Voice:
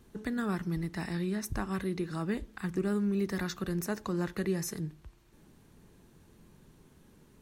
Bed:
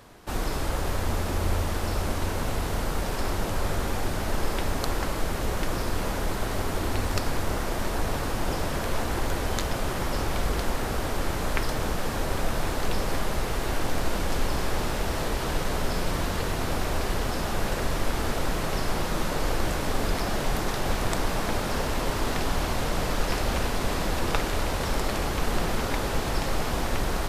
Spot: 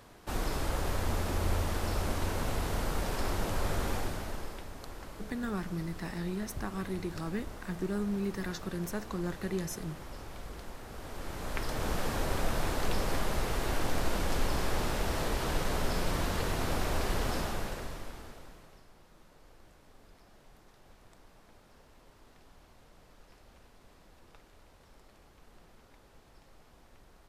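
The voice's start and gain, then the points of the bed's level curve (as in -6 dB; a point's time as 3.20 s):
5.05 s, -3.0 dB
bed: 3.94 s -4.5 dB
4.68 s -17.5 dB
10.86 s -17.5 dB
11.94 s -4 dB
17.37 s -4 dB
18.90 s -32 dB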